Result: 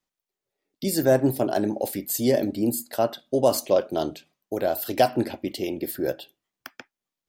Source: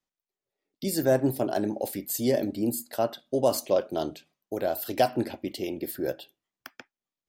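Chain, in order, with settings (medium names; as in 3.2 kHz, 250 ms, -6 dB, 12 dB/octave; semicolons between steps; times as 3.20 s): trim +3.5 dB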